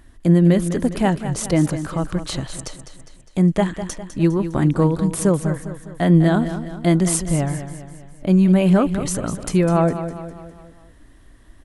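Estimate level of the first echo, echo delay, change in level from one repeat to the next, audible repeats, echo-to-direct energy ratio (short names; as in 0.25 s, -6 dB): -11.0 dB, 0.203 s, -6.0 dB, 4, -9.5 dB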